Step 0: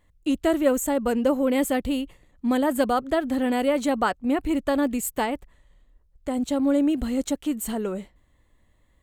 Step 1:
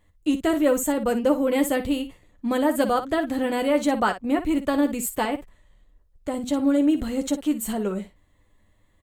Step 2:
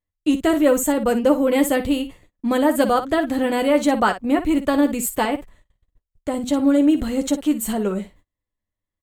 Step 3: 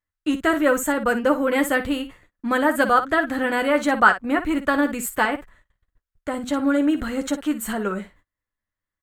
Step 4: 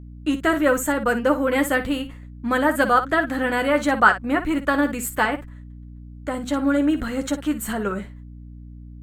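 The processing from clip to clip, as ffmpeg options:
ffmpeg -i in.wav -af "aecho=1:1:10|58:0.473|0.266" out.wav
ffmpeg -i in.wav -af "agate=range=-28dB:threshold=-51dB:ratio=16:detection=peak,volume=4dB" out.wav
ffmpeg -i in.wav -af "equalizer=frequency=1500:width_type=o:width=1:gain=13.5,volume=-4.5dB" out.wav
ffmpeg -i in.wav -af "aeval=exprs='val(0)+0.0126*(sin(2*PI*60*n/s)+sin(2*PI*2*60*n/s)/2+sin(2*PI*3*60*n/s)/3+sin(2*PI*4*60*n/s)/4+sin(2*PI*5*60*n/s)/5)':channel_layout=same" out.wav

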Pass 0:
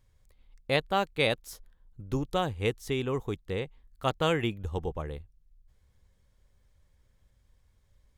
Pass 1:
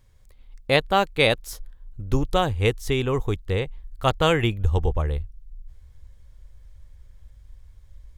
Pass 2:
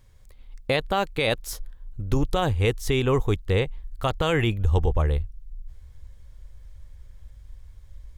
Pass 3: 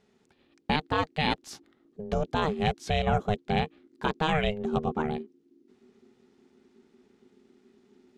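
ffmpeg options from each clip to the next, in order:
ffmpeg -i in.wav -af "asubboost=boost=4.5:cutoff=89,volume=7.5dB" out.wav
ffmpeg -i in.wav -af "alimiter=limit=-15dB:level=0:latency=1:release=42,volume=2.5dB" out.wav
ffmpeg -i in.wav -af "highpass=110,lowpass=5600,aeval=exprs='val(0)*sin(2*PI*310*n/s)':channel_layout=same" out.wav

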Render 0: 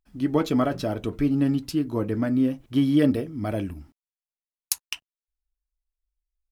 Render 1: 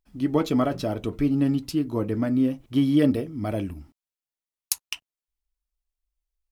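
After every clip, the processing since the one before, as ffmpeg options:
ffmpeg -i in.wav -af "equalizer=frequency=1600:width=4.7:gain=-4" out.wav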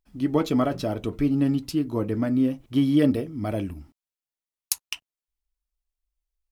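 ffmpeg -i in.wav -af anull out.wav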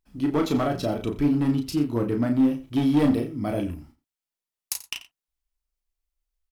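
ffmpeg -i in.wav -filter_complex "[0:a]asoftclip=type=hard:threshold=-17dB,asplit=2[link_01][link_02];[link_02]adelay=34,volume=-5dB[link_03];[link_01][link_03]amix=inputs=2:normalize=0,aecho=1:1:87:0.15" out.wav

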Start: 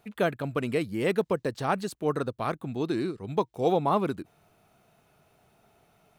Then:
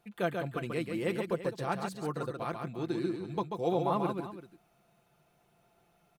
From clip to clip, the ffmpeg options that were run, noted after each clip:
ffmpeg -i in.wav -af "aecho=1:1:5.8:0.47,aecho=1:1:138|338:0.562|0.2,volume=-7.5dB" out.wav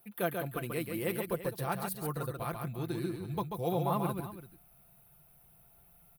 ffmpeg -i in.wav -af "asubboost=boost=7:cutoff=110,aexciter=amount=12.1:drive=4.6:freq=10000,volume=-1dB" out.wav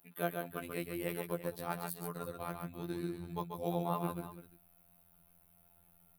ffmpeg -i in.wav -af "afftfilt=real='hypot(re,im)*cos(PI*b)':imag='0':win_size=2048:overlap=0.75,volume=-1dB" out.wav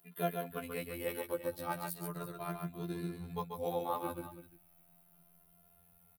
ffmpeg -i in.wav -filter_complex "[0:a]asplit=2[link_01][link_02];[link_02]adelay=2.5,afreqshift=0.37[link_03];[link_01][link_03]amix=inputs=2:normalize=1,volume=3.5dB" out.wav

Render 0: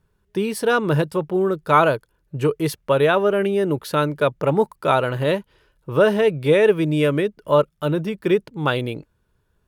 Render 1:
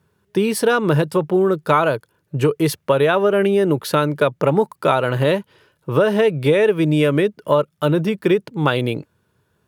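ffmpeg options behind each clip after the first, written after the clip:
ffmpeg -i in.wav -af "highpass=frequency=92:width=0.5412,highpass=frequency=92:width=1.3066,acompressor=threshold=-18dB:ratio=5,volume=6dB" out.wav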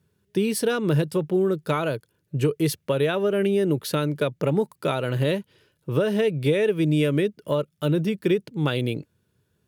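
ffmpeg -i in.wav -af "equalizer=frequency=1000:width=0.82:gain=-10,volume=-3dB" out.wav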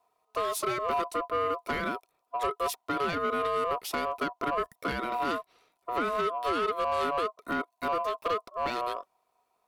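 ffmpeg -i in.wav -af "aeval=exprs='val(0)*sin(2*PI*850*n/s)':channel_layout=same,asoftclip=type=tanh:threshold=-20dB,volume=-2dB" out.wav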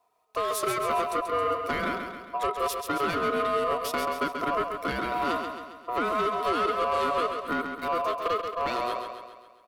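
ffmpeg -i in.wav -af "aecho=1:1:135|270|405|540|675|810|945:0.473|0.251|0.133|0.0704|0.0373|0.0198|0.0105,volume=1.5dB" out.wav

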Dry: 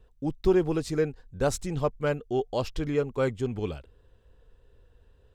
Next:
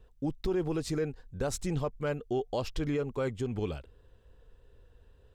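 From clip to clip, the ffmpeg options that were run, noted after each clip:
ffmpeg -i in.wav -af "alimiter=limit=-22.5dB:level=0:latency=1:release=103" out.wav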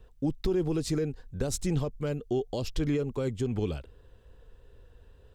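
ffmpeg -i in.wav -filter_complex "[0:a]acrossover=split=470|3000[link_01][link_02][link_03];[link_02]acompressor=threshold=-45dB:ratio=6[link_04];[link_01][link_04][link_03]amix=inputs=3:normalize=0,volume=4dB" out.wav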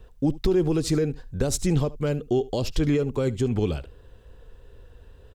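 ffmpeg -i in.wav -af "aecho=1:1:74:0.1,volume=6dB" out.wav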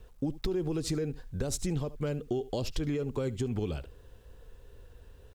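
ffmpeg -i in.wav -af "acompressor=threshold=-24dB:ratio=5,acrusher=bits=10:mix=0:aa=0.000001,volume=-4dB" out.wav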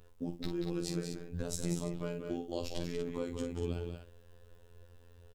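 ffmpeg -i in.wav -filter_complex "[0:a]asplit=2[link_01][link_02];[link_02]aecho=0:1:46.65|186.6|236.2:0.398|0.447|0.355[link_03];[link_01][link_03]amix=inputs=2:normalize=0,afftfilt=real='hypot(re,im)*cos(PI*b)':imag='0':win_size=2048:overlap=0.75,volume=-2dB" out.wav

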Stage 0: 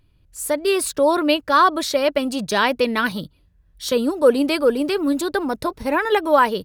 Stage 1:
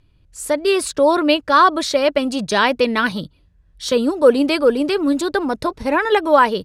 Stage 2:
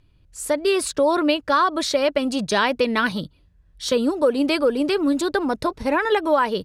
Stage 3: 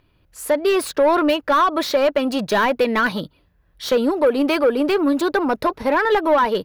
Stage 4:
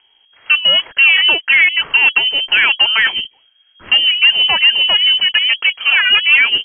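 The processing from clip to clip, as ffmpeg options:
ffmpeg -i in.wav -af "lowpass=8700,volume=2.5dB" out.wav
ffmpeg -i in.wav -af "acompressor=threshold=-13dB:ratio=6,volume=-1.5dB" out.wav
ffmpeg -i in.wav -filter_complex "[0:a]asplit=2[link_01][link_02];[link_02]highpass=frequency=720:poles=1,volume=16dB,asoftclip=type=tanh:threshold=-7dB[link_03];[link_01][link_03]amix=inputs=2:normalize=0,lowpass=frequency=1400:poles=1,volume=-6dB,aexciter=amount=7.5:drive=2.3:freq=11000" out.wav
ffmpeg -i in.wav -af "lowpass=frequency=2800:width_type=q:width=0.5098,lowpass=frequency=2800:width_type=q:width=0.6013,lowpass=frequency=2800:width_type=q:width=0.9,lowpass=frequency=2800:width_type=q:width=2.563,afreqshift=-3300,volume=5.5dB" out.wav

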